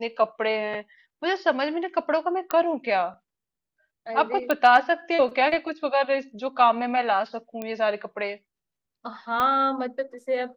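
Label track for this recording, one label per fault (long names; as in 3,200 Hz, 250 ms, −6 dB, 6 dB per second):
2.510000	2.510000	click −10 dBFS
4.510000	4.510000	click −10 dBFS
7.620000	7.620000	click −18 dBFS
9.400000	9.400000	click −12 dBFS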